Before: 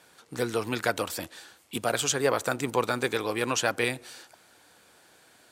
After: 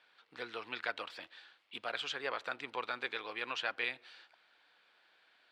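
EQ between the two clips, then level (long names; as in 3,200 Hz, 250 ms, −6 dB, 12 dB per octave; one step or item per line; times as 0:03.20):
resonant band-pass 4,300 Hz, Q 1
high-frequency loss of the air 430 metres
+4.0 dB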